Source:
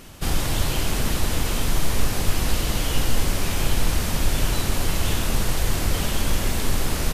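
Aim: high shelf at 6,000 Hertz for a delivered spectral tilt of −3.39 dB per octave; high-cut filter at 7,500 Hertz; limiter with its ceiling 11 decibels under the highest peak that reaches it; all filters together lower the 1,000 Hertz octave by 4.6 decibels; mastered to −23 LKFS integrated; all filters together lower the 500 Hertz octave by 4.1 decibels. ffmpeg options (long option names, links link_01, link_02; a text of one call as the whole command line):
ffmpeg -i in.wav -af "lowpass=7500,equalizer=frequency=500:width_type=o:gain=-4,equalizer=frequency=1000:width_type=o:gain=-5,highshelf=frequency=6000:gain=5.5,volume=7dB,alimiter=limit=-11dB:level=0:latency=1" out.wav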